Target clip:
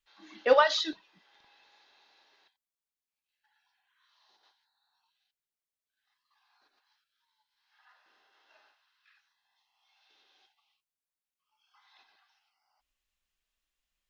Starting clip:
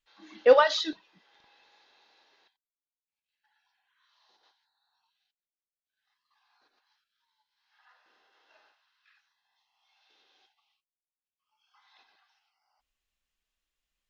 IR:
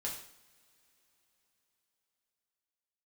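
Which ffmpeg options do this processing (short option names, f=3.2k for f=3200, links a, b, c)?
-filter_complex "[0:a]equalizer=f=190:w=0.32:g=-2.5,bandreject=f=490:w=13,acrossover=split=170[a][b];[a]acrusher=bits=5:mode=log:mix=0:aa=0.000001[c];[c][b]amix=inputs=2:normalize=0"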